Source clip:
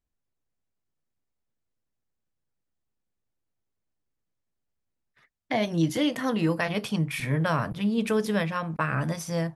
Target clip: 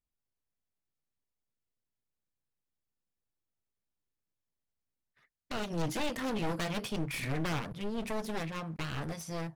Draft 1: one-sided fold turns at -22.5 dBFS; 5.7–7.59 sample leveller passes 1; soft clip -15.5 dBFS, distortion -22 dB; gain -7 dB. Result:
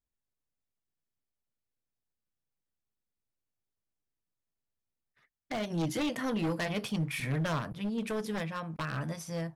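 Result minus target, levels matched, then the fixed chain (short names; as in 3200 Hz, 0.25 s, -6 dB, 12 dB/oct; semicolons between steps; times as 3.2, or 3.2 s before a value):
one-sided fold: distortion -11 dB
one-sided fold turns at -30.5 dBFS; 5.7–7.59 sample leveller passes 1; soft clip -15.5 dBFS, distortion -21 dB; gain -7 dB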